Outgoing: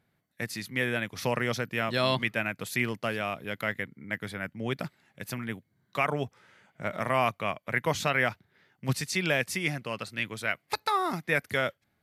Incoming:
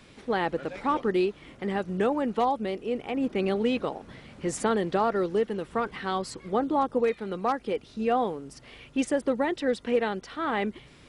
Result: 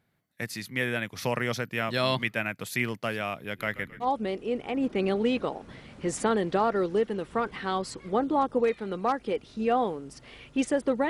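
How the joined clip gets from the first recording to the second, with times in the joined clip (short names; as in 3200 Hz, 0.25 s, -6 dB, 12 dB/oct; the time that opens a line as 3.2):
outgoing
3.36–4.08 frequency-shifting echo 0.133 s, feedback 43%, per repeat -53 Hz, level -15 dB
4.04 switch to incoming from 2.44 s, crossfade 0.08 s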